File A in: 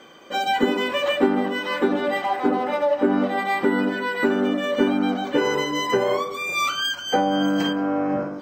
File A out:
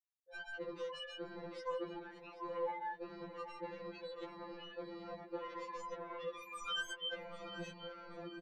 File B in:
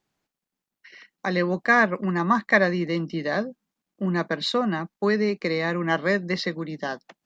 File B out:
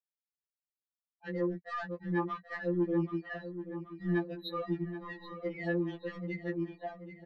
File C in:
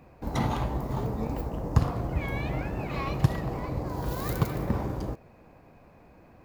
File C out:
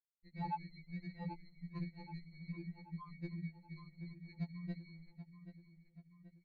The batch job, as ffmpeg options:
-filter_complex "[0:a]bandreject=f=50:t=h:w=6,bandreject=f=100:t=h:w=6,afftfilt=real='re*gte(hypot(re,im),0.224)':imag='im*gte(hypot(re,im),0.224)':win_size=1024:overlap=0.75,bass=f=250:g=-10,treble=f=4000:g=-9,areverse,acompressor=threshold=0.0224:ratio=8,areverse,alimiter=level_in=2.51:limit=0.0631:level=0:latency=1:release=226,volume=0.398,acrossover=split=210|2300[s0][s1][s2];[s0]acrusher=samples=21:mix=1:aa=0.000001[s3];[s3][s1][s2]amix=inputs=3:normalize=0,aresample=11025,aresample=44100,asoftclip=type=tanh:threshold=0.0168,asplit=2[s4][s5];[s5]adelay=781,lowpass=f=3800:p=1,volume=0.282,asplit=2[s6][s7];[s7]adelay=781,lowpass=f=3800:p=1,volume=0.53,asplit=2[s8][s9];[s9]adelay=781,lowpass=f=3800:p=1,volume=0.53,asplit=2[s10][s11];[s11]adelay=781,lowpass=f=3800:p=1,volume=0.53,asplit=2[s12][s13];[s13]adelay=781,lowpass=f=3800:p=1,volume=0.53,asplit=2[s14][s15];[s15]adelay=781,lowpass=f=3800:p=1,volume=0.53[s16];[s4][s6][s8][s10][s12][s14][s16]amix=inputs=7:normalize=0,afftfilt=real='re*2.83*eq(mod(b,8),0)':imag='im*2.83*eq(mod(b,8),0)':win_size=2048:overlap=0.75,volume=2.51"

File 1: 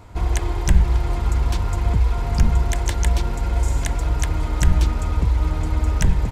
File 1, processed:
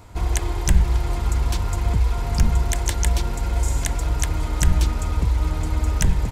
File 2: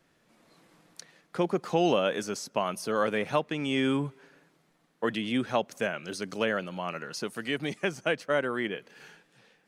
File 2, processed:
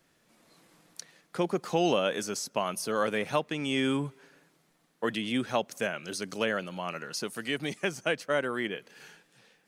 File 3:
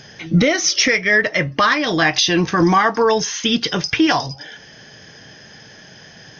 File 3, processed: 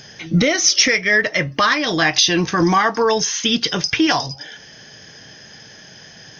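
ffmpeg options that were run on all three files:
-af "highshelf=f=4600:g=7.5,volume=0.841"

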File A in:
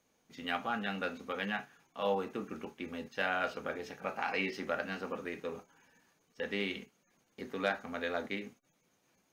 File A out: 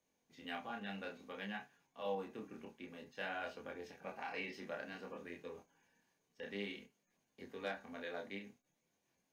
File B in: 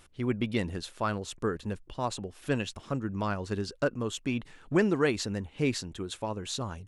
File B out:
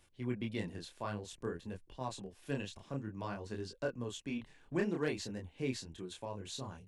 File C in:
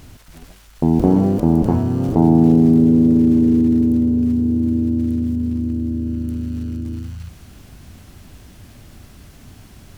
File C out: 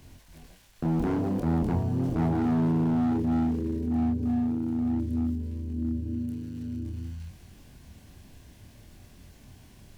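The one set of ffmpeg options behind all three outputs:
-filter_complex "[0:a]flanger=delay=22.5:depth=7.8:speed=0.54,bandreject=f=1300:w=6.2,acrossover=split=150[s0][s1];[s1]asoftclip=type=hard:threshold=0.106[s2];[s0][s2]amix=inputs=2:normalize=0,volume=0.501"

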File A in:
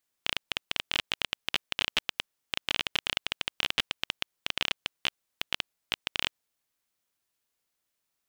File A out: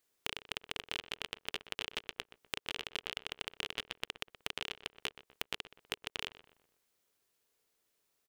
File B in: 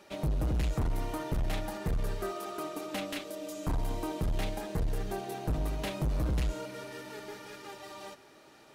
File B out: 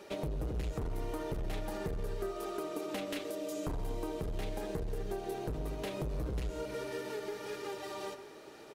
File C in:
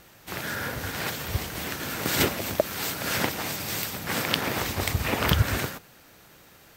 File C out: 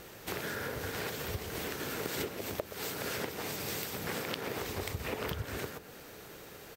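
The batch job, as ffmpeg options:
-filter_complex "[0:a]equalizer=f=430:w=2.6:g=9,acompressor=threshold=0.0141:ratio=6,asplit=2[s0][s1];[s1]adelay=124,lowpass=f=2000:p=1,volume=0.224,asplit=2[s2][s3];[s3]adelay=124,lowpass=f=2000:p=1,volume=0.44,asplit=2[s4][s5];[s5]adelay=124,lowpass=f=2000:p=1,volume=0.44,asplit=2[s6][s7];[s7]adelay=124,lowpass=f=2000:p=1,volume=0.44[s8];[s0][s2][s4][s6][s8]amix=inputs=5:normalize=0,volume=1.26"

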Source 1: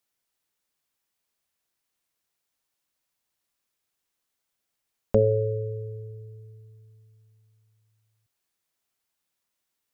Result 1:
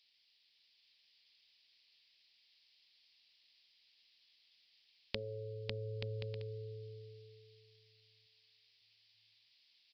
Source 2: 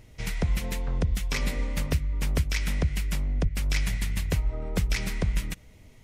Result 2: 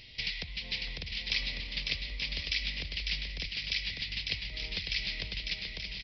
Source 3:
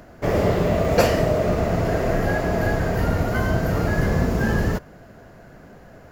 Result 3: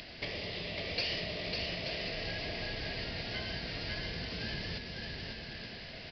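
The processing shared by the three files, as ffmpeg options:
-af "acompressor=threshold=0.0141:ratio=4,aexciter=amount=6.3:drive=9.6:freq=2100,aecho=1:1:550|880|1078|1197|1268:0.631|0.398|0.251|0.158|0.1,aresample=11025,aresample=44100,volume=0.447"

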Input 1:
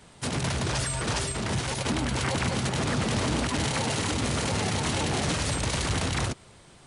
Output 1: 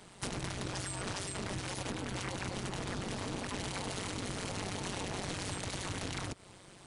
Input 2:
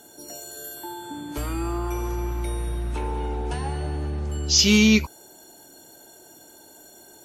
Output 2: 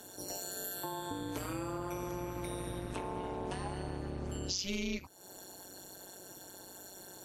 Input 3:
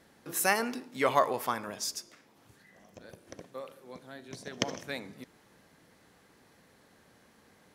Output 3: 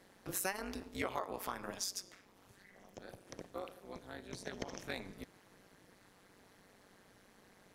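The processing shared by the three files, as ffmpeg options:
-af "highpass=f=89:w=0.5412,highpass=f=89:w=1.3066,acompressor=threshold=0.02:ratio=6,tremolo=f=190:d=0.919,volume=1.26"

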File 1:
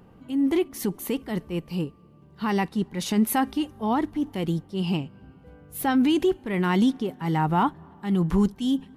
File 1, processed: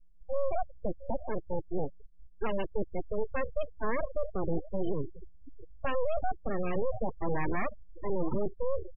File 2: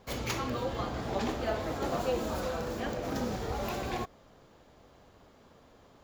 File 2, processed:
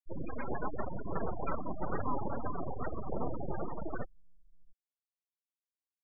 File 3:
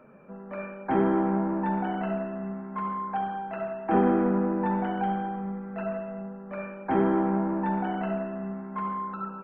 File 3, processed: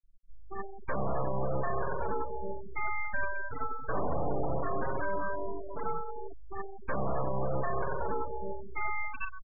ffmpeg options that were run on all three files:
-filter_complex "[0:a]asplit=2[s0][s1];[s1]adelay=677,lowpass=f=1700:p=1,volume=0.112,asplit=2[s2][s3];[s3]adelay=677,lowpass=f=1700:p=1,volume=0.37,asplit=2[s4][s5];[s5]adelay=677,lowpass=f=1700:p=1,volume=0.37[s6];[s0][s2][s4][s6]amix=inputs=4:normalize=0,acrossover=split=2600[s7][s8];[s8]acompressor=threshold=0.00282:ratio=4:attack=1:release=60[s9];[s7][s9]amix=inputs=2:normalize=0,alimiter=limit=0.0708:level=0:latency=1:release=26,aeval=exprs='abs(val(0))':c=same,afftfilt=real='re*gte(hypot(re,im),0.0355)':imag='im*gte(hypot(re,im),0.0355)':win_size=1024:overlap=0.75,volume=1.41"

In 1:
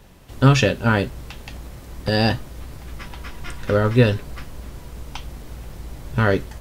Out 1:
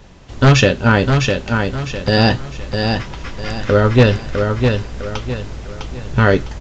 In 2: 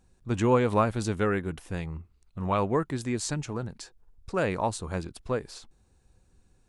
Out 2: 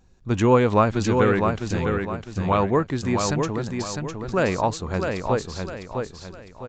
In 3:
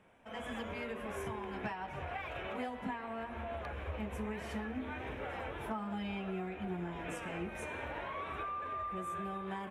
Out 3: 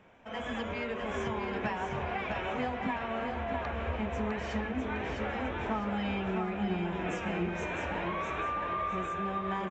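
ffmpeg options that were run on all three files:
-af "aeval=exprs='0.398*(abs(mod(val(0)/0.398+3,4)-2)-1)':c=same,aecho=1:1:655|1310|1965|2620|3275:0.562|0.208|0.077|0.0285|0.0105,aresample=16000,aresample=44100,volume=1.88"

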